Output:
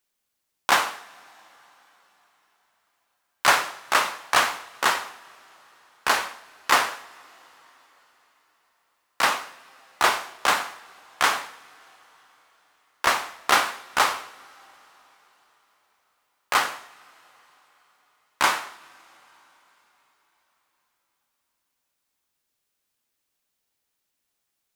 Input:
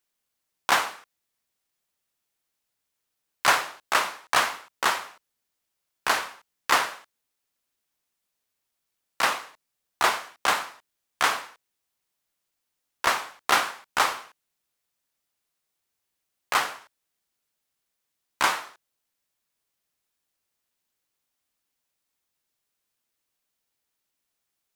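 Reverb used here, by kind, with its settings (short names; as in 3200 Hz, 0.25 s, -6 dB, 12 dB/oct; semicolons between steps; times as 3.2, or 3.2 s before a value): two-slope reverb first 0.56 s, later 4.5 s, from -18 dB, DRR 12 dB; gain +2 dB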